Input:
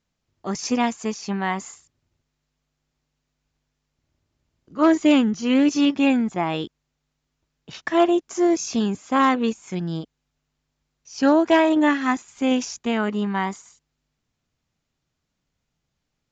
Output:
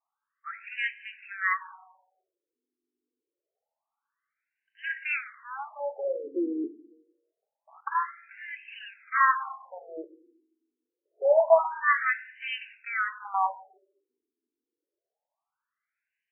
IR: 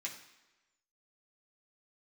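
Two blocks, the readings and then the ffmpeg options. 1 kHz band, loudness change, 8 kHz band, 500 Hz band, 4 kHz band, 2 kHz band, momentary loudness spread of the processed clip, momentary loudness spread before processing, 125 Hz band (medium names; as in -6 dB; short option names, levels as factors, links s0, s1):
-3.5 dB, -6.5 dB, no reading, -5.0 dB, -14.5 dB, 0.0 dB, 20 LU, 13 LU, under -40 dB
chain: -filter_complex "[0:a]highpass=f=240:p=1,asplit=2[s0][s1];[1:a]atrim=start_sample=2205,lowpass=2000[s2];[s1][s2]afir=irnorm=-1:irlink=0,volume=0.841[s3];[s0][s3]amix=inputs=2:normalize=0,afftfilt=real='re*between(b*sr/1024,320*pow(2200/320,0.5+0.5*sin(2*PI*0.26*pts/sr))/1.41,320*pow(2200/320,0.5+0.5*sin(2*PI*0.26*pts/sr))*1.41)':imag='im*between(b*sr/1024,320*pow(2200/320,0.5+0.5*sin(2*PI*0.26*pts/sr))/1.41,320*pow(2200/320,0.5+0.5*sin(2*PI*0.26*pts/sr))*1.41)':win_size=1024:overlap=0.75"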